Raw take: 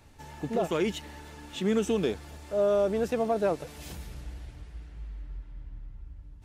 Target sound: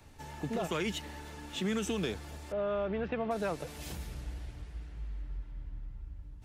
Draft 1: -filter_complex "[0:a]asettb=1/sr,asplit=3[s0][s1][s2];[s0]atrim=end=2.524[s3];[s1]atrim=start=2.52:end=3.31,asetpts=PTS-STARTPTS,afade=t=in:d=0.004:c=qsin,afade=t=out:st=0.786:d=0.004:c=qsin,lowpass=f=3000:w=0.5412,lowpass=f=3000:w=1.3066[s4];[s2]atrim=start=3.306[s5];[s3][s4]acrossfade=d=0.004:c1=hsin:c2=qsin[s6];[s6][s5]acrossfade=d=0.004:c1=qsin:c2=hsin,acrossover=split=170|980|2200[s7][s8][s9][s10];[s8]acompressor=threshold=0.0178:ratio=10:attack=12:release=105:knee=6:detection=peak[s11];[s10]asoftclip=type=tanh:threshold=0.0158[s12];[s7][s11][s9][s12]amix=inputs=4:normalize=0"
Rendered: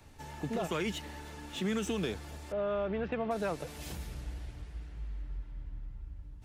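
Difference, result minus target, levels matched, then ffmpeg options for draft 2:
saturation: distortion +18 dB
-filter_complex "[0:a]asettb=1/sr,asplit=3[s0][s1][s2];[s0]atrim=end=2.524[s3];[s1]atrim=start=2.52:end=3.31,asetpts=PTS-STARTPTS,afade=t=in:d=0.004:c=qsin,afade=t=out:st=0.786:d=0.004:c=qsin,lowpass=f=3000:w=0.5412,lowpass=f=3000:w=1.3066[s4];[s2]atrim=start=3.306[s5];[s3][s4]acrossfade=d=0.004:c1=hsin:c2=qsin[s6];[s6][s5]acrossfade=d=0.004:c1=qsin:c2=hsin,acrossover=split=170|980|2200[s7][s8][s9][s10];[s8]acompressor=threshold=0.0178:ratio=10:attack=12:release=105:knee=6:detection=peak[s11];[s10]asoftclip=type=tanh:threshold=0.0596[s12];[s7][s11][s9][s12]amix=inputs=4:normalize=0"

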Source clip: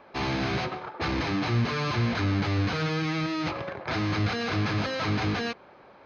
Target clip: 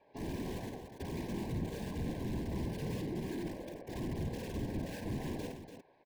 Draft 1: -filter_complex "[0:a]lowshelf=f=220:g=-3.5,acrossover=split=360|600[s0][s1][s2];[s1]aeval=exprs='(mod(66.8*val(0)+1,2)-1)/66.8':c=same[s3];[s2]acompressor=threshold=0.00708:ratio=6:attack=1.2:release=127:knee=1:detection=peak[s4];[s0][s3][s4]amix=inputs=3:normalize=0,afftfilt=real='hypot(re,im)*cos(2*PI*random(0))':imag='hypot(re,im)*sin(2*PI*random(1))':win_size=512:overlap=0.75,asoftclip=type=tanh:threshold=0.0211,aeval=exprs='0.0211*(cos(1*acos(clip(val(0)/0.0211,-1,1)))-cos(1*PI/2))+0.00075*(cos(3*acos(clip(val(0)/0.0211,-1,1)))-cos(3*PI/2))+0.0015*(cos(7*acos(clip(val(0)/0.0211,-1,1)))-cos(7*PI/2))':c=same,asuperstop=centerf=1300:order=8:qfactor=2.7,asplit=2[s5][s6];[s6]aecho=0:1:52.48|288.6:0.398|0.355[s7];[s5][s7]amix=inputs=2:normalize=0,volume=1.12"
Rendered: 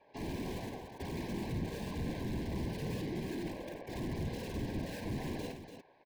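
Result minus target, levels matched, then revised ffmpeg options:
compression: peak gain reduction -9.5 dB
-filter_complex "[0:a]lowshelf=f=220:g=-3.5,acrossover=split=360|600[s0][s1][s2];[s1]aeval=exprs='(mod(66.8*val(0)+1,2)-1)/66.8':c=same[s3];[s2]acompressor=threshold=0.00188:ratio=6:attack=1.2:release=127:knee=1:detection=peak[s4];[s0][s3][s4]amix=inputs=3:normalize=0,afftfilt=real='hypot(re,im)*cos(2*PI*random(0))':imag='hypot(re,im)*sin(2*PI*random(1))':win_size=512:overlap=0.75,asoftclip=type=tanh:threshold=0.0211,aeval=exprs='0.0211*(cos(1*acos(clip(val(0)/0.0211,-1,1)))-cos(1*PI/2))+0.00075*(cos(3*acos(clip(val(0)/0.0211,-1,1)))-cos(3*PI/2))+0.0015*(cos(7*acos(clip(val(0)/0.0211,-1,1)))-cos(7*PI/2))':c=same,asuperstop=centerf=1300:order=8:qfactor=2.7,asplit=2[s5][s6];[s6]aecho=0:1:52.48|288.6:0.398|0.355[s7];[s5][s7]amix=inputs=2:normalize=0,volume=1.12"

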